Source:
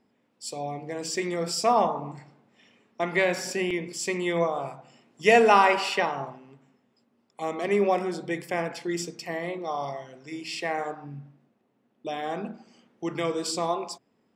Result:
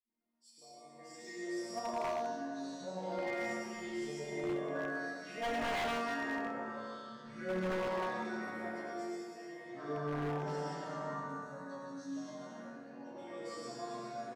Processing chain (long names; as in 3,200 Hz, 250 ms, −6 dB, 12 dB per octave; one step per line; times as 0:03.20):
high-shelf EQ 3,600 Hz −5.5 dB
resonators tuned to a chord A#3 sus4, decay 0.59 s
delay with pitch and tempo change per echo 663 ms, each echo −4 semitones, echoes 2
0:10.39–0:12.50: graphic EQ with 15 bands 160 Hz +11 dB, 400 Hz −6 dB, 1,000 Hz +5 dB, 2,500 Hz −6 dB, 6,300 Hz +7 dB
three-band delay without the direct sound highs, lows, mids 50/90 ms, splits 310/2,600 Hz
dense smooth reverb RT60 2.1 s, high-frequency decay 0.7×, pre-delay 90 ms, DRR −4.5 dB
wave folding −31 dBFS
level +1 dB